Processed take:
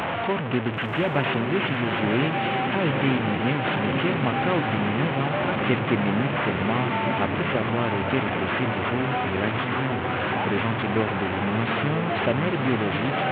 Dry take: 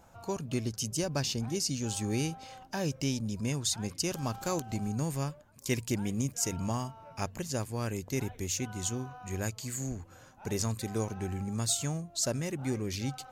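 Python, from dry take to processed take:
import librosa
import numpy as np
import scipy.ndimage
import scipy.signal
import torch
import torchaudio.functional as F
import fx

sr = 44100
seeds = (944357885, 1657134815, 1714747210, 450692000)

y = fx.delta_mod(x, sr, bps=16000, step_db=-28.5)
y = scipy.signal.sosfilt(scipy.signal.butter(2, 140.0, 'highpass', fs=sr, output='sos'), y)
y = fx.echo_diffused(y, sr, ms=1007, feedback_pct=44, wet_db=-4)
y = y * 10.0 ** (8.5 / 20.0)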